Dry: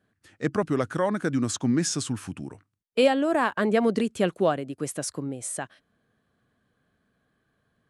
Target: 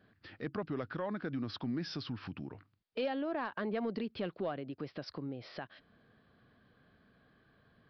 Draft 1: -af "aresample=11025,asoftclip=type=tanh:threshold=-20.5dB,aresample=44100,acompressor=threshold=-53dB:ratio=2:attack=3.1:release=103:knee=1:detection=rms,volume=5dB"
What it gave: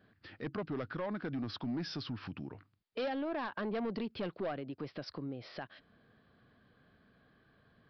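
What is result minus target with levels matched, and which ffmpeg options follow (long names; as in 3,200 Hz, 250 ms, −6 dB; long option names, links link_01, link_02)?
soft clipping: distortion +13 dB
-af "aresample=11025,asoftclip=type=tanh:threshold=-10.5dB,aresample=44100,acompressor=threshold=-53dB:ratio=2:attack=3.1:release=103:knee=1:detection=rms,volume=5dB"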